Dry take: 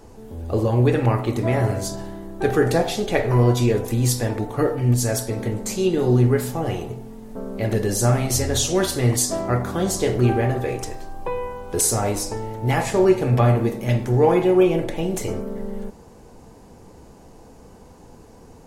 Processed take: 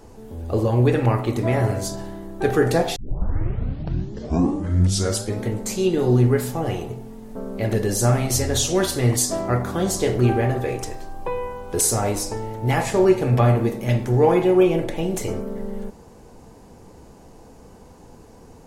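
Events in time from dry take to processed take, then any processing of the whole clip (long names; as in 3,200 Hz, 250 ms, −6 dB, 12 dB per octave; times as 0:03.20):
0:02.96: tape start 2.51 s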